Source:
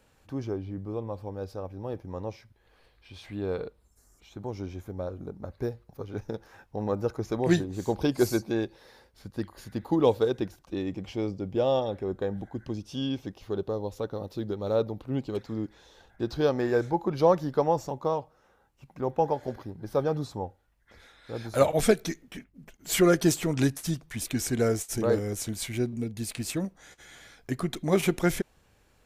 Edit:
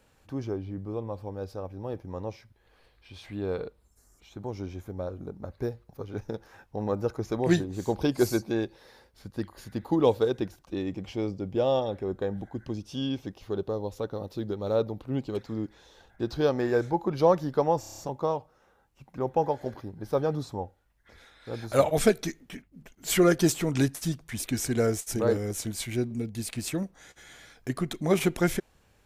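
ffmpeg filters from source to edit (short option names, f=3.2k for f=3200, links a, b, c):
-filter_complex "[0:a]asplit=7[a][b][c][d][e][f][g];[a]atrim=end=17.832[h];[b]atrim=start=17.798:end=17.832[i];[c]atrim=start=17.798:end=17.832[j];[d]atrim=start=17.798:end=17.832[k];[e]atrim=start=17.798:end=17.832[l];[f]atrim=start=17.798:end=17.832[m];[g]atrim=start=17.798[n];[h][i]acrossfade=d=0.004:c1=hsin:c2=hsin[o];[o][j]acrossfade=d=0.004:c1=hsin:c2=hsin[p];[p][k]acrossfade=d=0.004:c1=hsin:c2=hsin[q];[q][l]acrossfade=d=0.004:c1=hsin:c2=hsin[r];[r][m]acrossfade=d=0.004:c1=hsin:c2=hsin[s];[s][n]acrossfade=d=0.004:c1=hsin:c2=hsin"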